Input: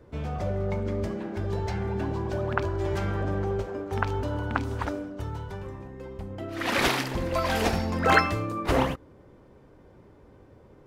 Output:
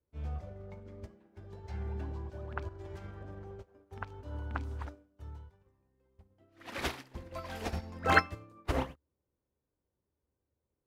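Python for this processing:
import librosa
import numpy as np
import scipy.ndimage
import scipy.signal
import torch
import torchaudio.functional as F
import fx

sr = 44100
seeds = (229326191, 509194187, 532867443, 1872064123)

y = fx.peak_eq(x, sr, hz=73.0, db=11.5, octaves=0.31)
y = fx.upward_expand(y, sr, threshold_db=-37.0, expansion=2.5)
y = F.gain(torch.from_numpy(y), -3.0).numpy()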